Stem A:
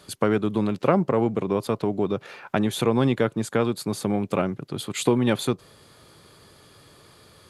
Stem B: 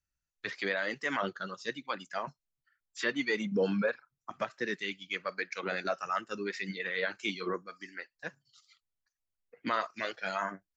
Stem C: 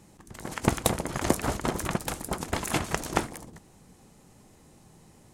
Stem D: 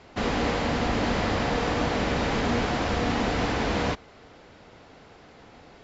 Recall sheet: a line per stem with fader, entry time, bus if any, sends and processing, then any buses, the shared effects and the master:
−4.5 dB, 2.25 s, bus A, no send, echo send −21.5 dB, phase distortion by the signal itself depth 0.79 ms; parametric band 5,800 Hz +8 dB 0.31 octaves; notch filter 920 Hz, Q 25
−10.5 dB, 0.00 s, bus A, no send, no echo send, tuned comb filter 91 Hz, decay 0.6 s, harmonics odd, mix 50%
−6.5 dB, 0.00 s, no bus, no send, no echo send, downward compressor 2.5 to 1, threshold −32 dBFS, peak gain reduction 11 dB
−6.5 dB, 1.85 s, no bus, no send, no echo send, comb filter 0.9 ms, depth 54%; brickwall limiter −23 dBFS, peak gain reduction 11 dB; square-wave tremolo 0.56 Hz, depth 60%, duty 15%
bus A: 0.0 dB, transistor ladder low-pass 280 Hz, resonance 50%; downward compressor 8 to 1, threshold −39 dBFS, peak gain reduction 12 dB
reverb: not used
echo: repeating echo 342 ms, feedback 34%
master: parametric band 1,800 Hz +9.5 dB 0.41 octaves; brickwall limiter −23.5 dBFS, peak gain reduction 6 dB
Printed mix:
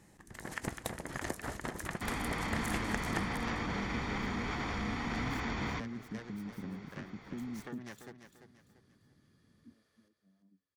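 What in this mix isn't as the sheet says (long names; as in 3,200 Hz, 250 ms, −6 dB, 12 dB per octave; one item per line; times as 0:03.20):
stem D: missing square-wave tremolo 0.56 Hz, depth 60%, duty 15%
master: missing brickwall limiter −23.5 dBFS, peak gain reduction 6 dB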